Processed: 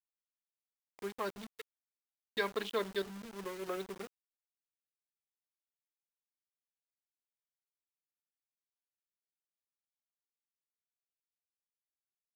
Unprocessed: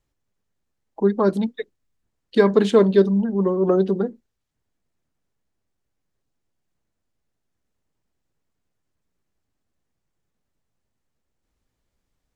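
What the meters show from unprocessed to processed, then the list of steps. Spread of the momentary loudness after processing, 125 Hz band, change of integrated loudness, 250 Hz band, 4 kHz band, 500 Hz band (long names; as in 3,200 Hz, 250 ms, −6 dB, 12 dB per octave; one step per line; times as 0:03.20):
15 LU, −28.0 dB, −20.0 dB, −26.5 dB, −7.0 dB, −21.0 dB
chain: adaptive Wiener filter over 41 samples
resonant band-pass 3,100 Hz, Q 1.2
bit-depth reduction 8 bits, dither none
level −2 dB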